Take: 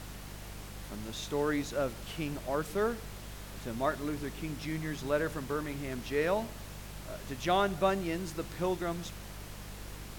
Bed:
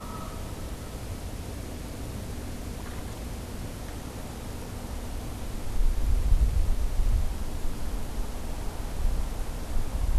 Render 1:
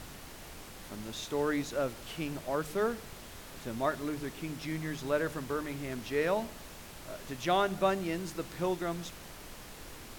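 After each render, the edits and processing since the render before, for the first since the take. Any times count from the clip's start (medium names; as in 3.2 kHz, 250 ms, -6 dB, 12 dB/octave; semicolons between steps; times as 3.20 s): de-hum 50 Hz, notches 4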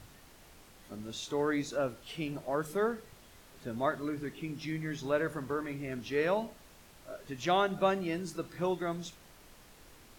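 noise print and reduce 9 dB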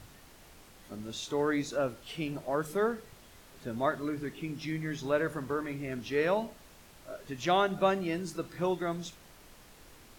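trim +1.5 dB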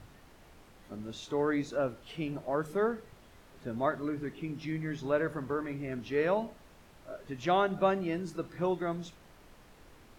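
treble shelf 3.4 kHz -10 dB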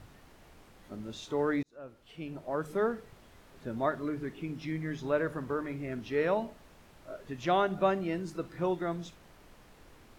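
1.63–2.77 s: fade in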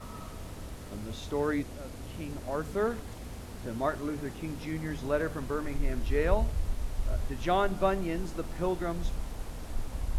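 add bed -6 dB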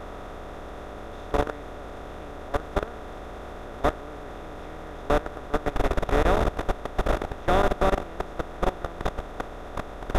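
spectral levelling over time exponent 0.2; level held to a coarse grid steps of 19 dB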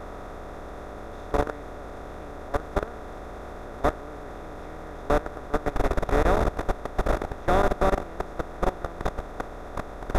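peaking EQ 3 kHz -8 dB 0.46 oct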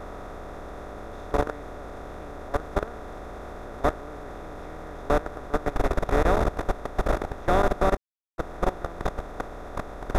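7.97–8.38 s: mute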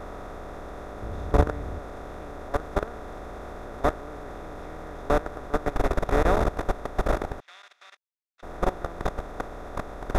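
1.02–1.79 s: peaking EQ 85 Hz +12 dB 2.4 oct; 7.40–8.43 s: ladder band-pass 3.7 kHz, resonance 25%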